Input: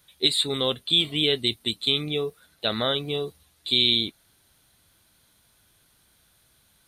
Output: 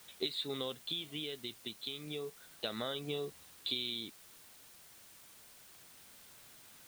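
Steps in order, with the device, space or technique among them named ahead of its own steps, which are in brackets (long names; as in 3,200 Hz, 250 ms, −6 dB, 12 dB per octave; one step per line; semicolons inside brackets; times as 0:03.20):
medium wave at night (band-pass filter 130–4,200 Hz; downward compressor, threshold −36 dBFS, peak gain reduction 17.5 dB; amplitude tremolo 0.3 Hz, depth 45%; steady tone 9,000 Hz −69 dBFS; white noise bed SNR 15 dB)
level +1 dB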